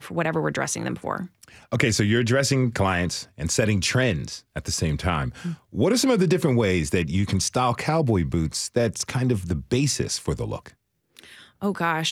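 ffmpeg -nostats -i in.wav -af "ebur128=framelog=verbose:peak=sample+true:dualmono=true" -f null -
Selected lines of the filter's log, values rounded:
Integrated loudness:
  I:         -20.6 LUFS
  Threshold: -31.1 LUFS
Loudness range:
  LRA:         3.7 LU
  Threshold: -40.6 LUFS
  LRA low:   -23.1 LUFS
  LRA high:  -19.3 LUFS
Sample peak:
  Peak:       -3.5 dBFS
True peak:
  Peak:       -3.5 dBFS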